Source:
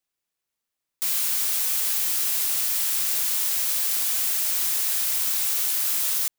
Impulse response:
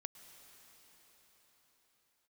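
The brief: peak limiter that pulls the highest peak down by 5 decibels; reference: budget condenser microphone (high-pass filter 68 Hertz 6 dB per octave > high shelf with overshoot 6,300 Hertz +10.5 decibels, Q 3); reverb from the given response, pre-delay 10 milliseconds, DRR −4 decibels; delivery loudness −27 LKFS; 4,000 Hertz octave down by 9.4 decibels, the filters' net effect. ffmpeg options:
-filter_complex "[0:a]equalizer=frequency=4000:width_type=o:gain=-7.5,alimiter=limit=-15.5dB:level=0:latency=1,asplit=2[link_01][link_02];[1:a]atrim=start_sample=2205,adelay=10[link_03];[link_02][link_03]afir=irnorm=-1:irlink=0,volume=8.5dB[link_04];[link_01][link_04]amix=inputs=2:normalize=0,highpass=frequency=68:poles=1,highshelf=frequency=6300:width_type=q:width=3:gain=10.5,volume=-22dB"

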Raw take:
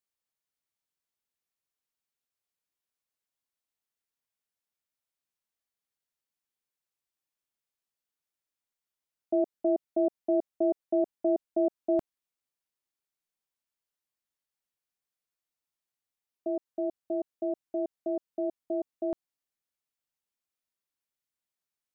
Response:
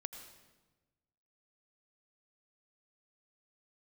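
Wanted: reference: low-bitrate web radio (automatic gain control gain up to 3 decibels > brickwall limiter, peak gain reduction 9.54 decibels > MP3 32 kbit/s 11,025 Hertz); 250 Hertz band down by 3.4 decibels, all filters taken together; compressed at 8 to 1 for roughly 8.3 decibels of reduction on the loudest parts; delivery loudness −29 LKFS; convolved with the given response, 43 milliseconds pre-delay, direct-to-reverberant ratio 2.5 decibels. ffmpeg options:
-filter_complex "[0:a]equalizer=frequency=250:width_type=o:gain=-6,acompressor=threshold=-32dB:ratio=8,asplit=2[link_01][link_02];[1:a]atrim=start_sample=2205,adelay=43[link_03];[link_02][link_03]afir=irnorm=-1:irlink=0,volume=0dB[link_04];[link_01][link_04]amix=inputs=2:normalize=0,dynaudnorm=maxgain=3dB,alimiter=level_in=5.5dB:limit=-24dB:level=0:latency=1,volume=-5.5dB,volume=10dB" -ar 11025 -c:a libmp3lame -b:a 32k

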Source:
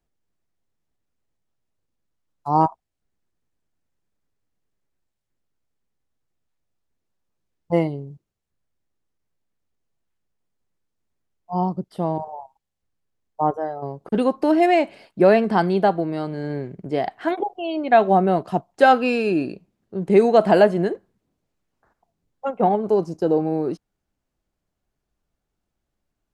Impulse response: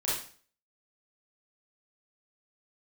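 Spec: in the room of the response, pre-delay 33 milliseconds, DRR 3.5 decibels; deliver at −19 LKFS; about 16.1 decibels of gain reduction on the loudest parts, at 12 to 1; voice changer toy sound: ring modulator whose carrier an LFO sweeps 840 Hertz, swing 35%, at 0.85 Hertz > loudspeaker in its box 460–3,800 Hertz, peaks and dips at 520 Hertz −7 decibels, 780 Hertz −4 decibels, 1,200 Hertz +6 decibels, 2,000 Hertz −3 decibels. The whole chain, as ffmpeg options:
-filter_complex "[0:a]acompressor=threshold=-25dB:ratio=12,asplit=2[link_01][link_02];[1:a]atrim=start_sample=2205,adelay=33[link_03];[link_02][link_03]afir=irnorm=-1:irlink=0,volume=-10.5dB[link_04];[link_01][link_04]amix=inputs=2:normalize=0,aeval=exprs='val(0)*sin(2*PI*840*n/s+840*0.35/0.85*sin(2*PI*0.85*n/s))':channel_layout=same,highpass=460,equalizer=frequency=520:width_type=q:width=4:gain=-7,equalizer=frequency=780:width_type=q:width=4:gain=-4,equalizer=frequency=1200:width_type=q:width=4:gain=6,equalizer=frequency=2000:width_type=q:width=4:gain=-3,lowpass=frequency=3800:width=0.5412,lowpass=frequency=3800:width=1.3066,volume=13dB"

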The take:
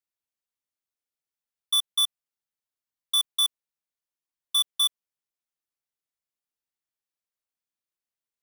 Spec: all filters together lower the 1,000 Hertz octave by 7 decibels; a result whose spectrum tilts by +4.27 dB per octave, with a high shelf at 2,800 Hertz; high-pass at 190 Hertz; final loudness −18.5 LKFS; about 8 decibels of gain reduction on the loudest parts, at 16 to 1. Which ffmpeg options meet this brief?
ffmpeg -i in.wav -af "highpass=190,equalizer=frequency=1000:width_type=o:gain=-7.5,highshelf=frequency=2800:gain=-4.5,acompressor=threshold=-32dB:ratio=16,volume=16dB" out.wav

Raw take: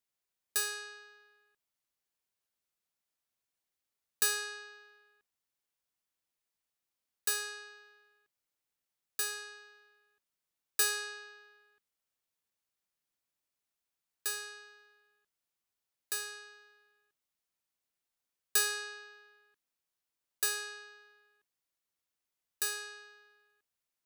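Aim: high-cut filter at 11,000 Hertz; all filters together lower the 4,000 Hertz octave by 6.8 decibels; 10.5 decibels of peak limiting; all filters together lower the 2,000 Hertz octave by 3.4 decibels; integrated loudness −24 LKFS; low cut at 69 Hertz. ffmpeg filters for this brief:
ffmpeg -i in.wav -af "highpass=69,lowpass=11000,equalizer=frequency=2000:width_type=o:gain=-3,equalizer=frequency=4000:width_type=o:gain=-7.5,volume=19dB,alimiter=limit=-12.5dB:level=0:latency=1" out.wav

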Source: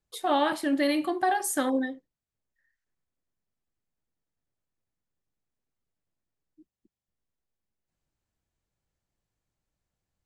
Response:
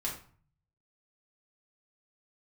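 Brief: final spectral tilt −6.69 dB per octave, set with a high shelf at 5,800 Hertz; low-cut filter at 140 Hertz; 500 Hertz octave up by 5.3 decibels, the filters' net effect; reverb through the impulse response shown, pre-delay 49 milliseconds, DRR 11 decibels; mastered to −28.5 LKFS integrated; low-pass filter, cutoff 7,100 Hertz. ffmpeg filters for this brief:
-filter_complex "[0:a]highpass=140,lowpass=7100,equalizer=frequency=500:width_type=o:gain=6.5,highshelf=frequency=5800:gain=6.5,asplit=2[link_01][link_02];[1:a]atrim=start_sample=2205,adelay=49[link_03];[link_02][link_03]afir=irnorm=-1:irlink=0,volume=-14dB[link_04];[link_01][link_04]amix=inputs=2:normalize=0,volume=-4.5dB"

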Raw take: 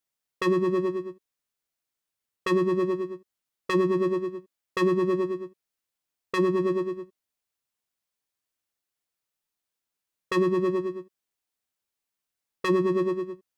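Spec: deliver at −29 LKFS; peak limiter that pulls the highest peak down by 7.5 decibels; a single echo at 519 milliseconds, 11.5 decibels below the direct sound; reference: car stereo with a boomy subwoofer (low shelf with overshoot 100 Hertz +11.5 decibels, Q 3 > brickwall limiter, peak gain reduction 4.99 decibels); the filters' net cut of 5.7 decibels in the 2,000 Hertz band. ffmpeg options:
ffmpeg -i in.wav -af "equalizer=frequency=2000:width_type=o:gain=-6.5,alimiter=limit=-21dB:level=0:latency=1,lowshelf=frequency=100:width_type=q:width=3:gain=11.5,aecho=1:1:519:0.266,volume=5dB,alimiter=limit=-20dB:level=0:latency=1" out.wav

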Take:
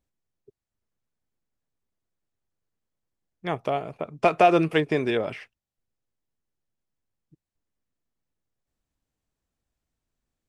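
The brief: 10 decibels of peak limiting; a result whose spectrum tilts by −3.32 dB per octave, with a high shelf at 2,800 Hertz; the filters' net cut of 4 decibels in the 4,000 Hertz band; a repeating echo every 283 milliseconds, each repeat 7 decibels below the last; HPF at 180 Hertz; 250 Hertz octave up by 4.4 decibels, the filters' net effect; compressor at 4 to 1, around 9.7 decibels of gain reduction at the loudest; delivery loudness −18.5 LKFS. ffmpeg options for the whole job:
ffmpeg -i in.wav -af "highpass=180,equalizer=frequency=250:width_type=o:gain=8,highshelf=frequency=2800:gain=3.5,equalizer=frequency=4000:width_type=o:gain=-8.5,acompressor=threshold=-24dB:ratio=4,alimiter=limit=-19.5dB:level=0:latency=1,aecho=1:1:283|566|849|1132|1415:0.447|0.201|0.0905|0.0407|0.0183,volume=13dB" out.wav

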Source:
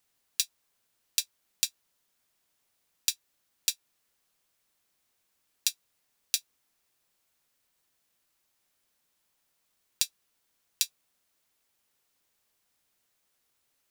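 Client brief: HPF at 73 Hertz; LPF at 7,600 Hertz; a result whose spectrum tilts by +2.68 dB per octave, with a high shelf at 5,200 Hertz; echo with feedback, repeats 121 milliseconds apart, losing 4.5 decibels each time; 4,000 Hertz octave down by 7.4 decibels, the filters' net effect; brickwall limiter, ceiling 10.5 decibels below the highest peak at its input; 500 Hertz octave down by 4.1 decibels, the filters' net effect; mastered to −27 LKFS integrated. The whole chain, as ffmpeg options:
ffmpeg -i in.wav -af "highpass=73,lowpass=7600,equalizer=frequency=500:width_type=o:gain=-5,equalizer=frequency=4000:width_type=o:gain=-5.5,highshelf=frequency=5200:gain=-6,alimiter=limit=-22.5dB:level=0:latency=1,aecho=1:1:121|242|363|484|605|726|847|968|1089:0.596|0.357|0.214|0.129|0.0772|0.0463|0.0278|0.0167|0.01,volume=22dB" out.wav

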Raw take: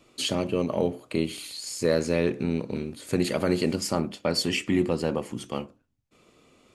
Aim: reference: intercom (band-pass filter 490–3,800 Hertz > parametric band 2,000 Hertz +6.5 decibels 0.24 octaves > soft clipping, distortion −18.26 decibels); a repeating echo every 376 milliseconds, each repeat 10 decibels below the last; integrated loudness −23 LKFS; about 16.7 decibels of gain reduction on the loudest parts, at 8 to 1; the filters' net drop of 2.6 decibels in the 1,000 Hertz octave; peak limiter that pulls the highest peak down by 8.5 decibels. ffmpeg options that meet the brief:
ffmpeg -i in.wav -af "equalizer=frequency=1000:width_type=o:gain=-3,acompressor=threshold=-37dB:ratio=8,alimiter=level_in=6.5dB:limit=-24dB:level=0:latency=1,volume=-6.5dB,highpass=490,lowpass=3800,equalizer=frequency=2000:width_type=o:width=0.24:gain=6.5,aecho=1:1:376|752|1128|1504:0.316|0.101|0.0324|0.0104,asoftclip=threshold=-37.5dB,volume=25.5dB" out.wav

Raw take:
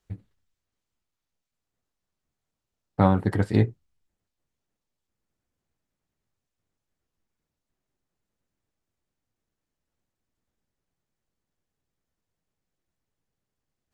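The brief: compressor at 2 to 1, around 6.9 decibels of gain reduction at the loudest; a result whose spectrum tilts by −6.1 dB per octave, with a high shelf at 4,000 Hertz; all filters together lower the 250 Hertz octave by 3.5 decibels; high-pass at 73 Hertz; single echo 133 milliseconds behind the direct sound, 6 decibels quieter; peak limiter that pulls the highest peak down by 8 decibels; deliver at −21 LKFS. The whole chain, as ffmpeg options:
ffmpeg -i in.wav -af "highpass=73,equalizer=frequency=250:width_type=o:gain=-5,highshelf=frequency=4000:gain=5,acompressor=threshold=-29dB:ratio=2,alimiter=limit=-20.5dB:level=0:latency=1,aecho=1:1:133:0.501,volume=14dB" out.wav

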